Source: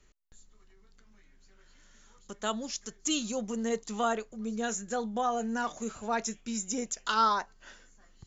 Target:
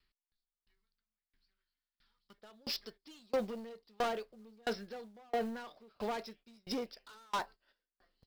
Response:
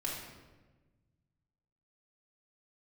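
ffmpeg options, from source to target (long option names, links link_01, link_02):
-af "agate=range=-15dB:threshold=-47dB:ratio=16:detection=peak,aresample=11025,aresample=44100,asoftclip=type=tanh:threshold=-24dB,alimiter=level_in=5dB:limit=-24dB:level=0:latency=1:release=44,volume=-5dB,bass=frequency=250:gain=-6,treble=frequency=4000:gain=10,asoftclip=type=hard:threshold=-37.5dB,acrusher=bits=5:mode=log:mix=0:aa=0.000001,asetnsamples=nb_out_samples=441:pad=0,asendcmd='2.38 equalizer g 4.5',equalizer=frequency=490:width=1.1:gain=-11.5,aeval=exprs='val(0)*pow(10,-34*if(lt(mod(1.5*n/s,1),2*abs(1.5)/1000),1-mod(1.5*n/s,1)/(2*abs(1.5)/1000),(mod(1.5*n/s,1)-2*abs(1.5)/1000)/(1-2*abs(1.5)/1000))/20)':channel_layout=same,volume=6dB"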